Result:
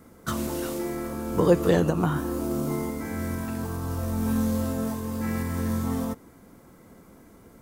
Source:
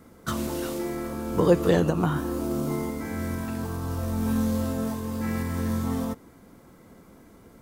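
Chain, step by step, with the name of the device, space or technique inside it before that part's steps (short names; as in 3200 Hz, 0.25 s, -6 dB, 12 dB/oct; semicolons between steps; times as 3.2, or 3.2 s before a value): exciter from parts (in parallel at -9.5 dB: HPF 2400 Hz 12 dB/oct + soft clip -35 dBFS, distortion -15 dB + HPF 3800 Hz 12 dB/oct)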